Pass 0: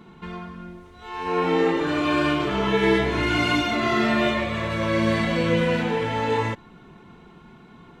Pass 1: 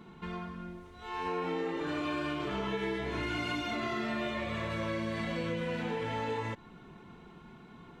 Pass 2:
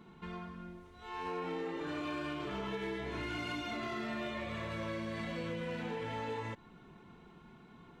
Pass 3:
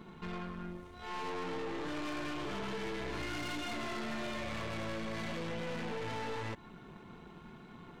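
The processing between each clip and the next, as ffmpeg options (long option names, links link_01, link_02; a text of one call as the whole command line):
ffmpeg -i in.wav -af "acompressor=threshold=-27dB:ratio=6,volume=-4.5dB" out.wav
ffmpeg -i in.wav -af "asoftclip=type=hard:threshold=-27.5dB,volume=-4.5dB" out.wav
ffmpeg -i in.wav -af "aeval=exprs='(tanh(178*val(0)+0.65)-tanh(0.65))/178':channel_layout=same,volume=8dB" out.wav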